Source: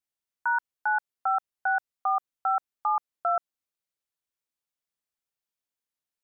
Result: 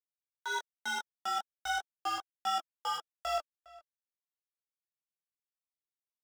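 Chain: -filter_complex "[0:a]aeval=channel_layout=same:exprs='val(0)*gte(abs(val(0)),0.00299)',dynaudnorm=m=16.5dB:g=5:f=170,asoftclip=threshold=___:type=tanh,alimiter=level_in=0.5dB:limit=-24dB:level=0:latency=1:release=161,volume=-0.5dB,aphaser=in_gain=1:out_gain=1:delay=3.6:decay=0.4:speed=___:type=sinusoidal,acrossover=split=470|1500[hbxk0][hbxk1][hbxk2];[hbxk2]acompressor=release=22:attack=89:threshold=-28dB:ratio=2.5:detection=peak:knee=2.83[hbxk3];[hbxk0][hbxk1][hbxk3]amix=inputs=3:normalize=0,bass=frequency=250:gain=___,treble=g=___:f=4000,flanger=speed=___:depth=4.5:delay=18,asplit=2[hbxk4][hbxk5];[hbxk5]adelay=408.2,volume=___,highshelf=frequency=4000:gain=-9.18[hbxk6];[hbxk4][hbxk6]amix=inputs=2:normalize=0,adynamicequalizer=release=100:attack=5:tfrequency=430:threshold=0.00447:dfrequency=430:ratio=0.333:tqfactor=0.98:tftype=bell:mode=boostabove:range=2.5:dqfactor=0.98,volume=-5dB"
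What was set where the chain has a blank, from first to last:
-13.5dB, 1.3, -9, 14, 0.4, -20dB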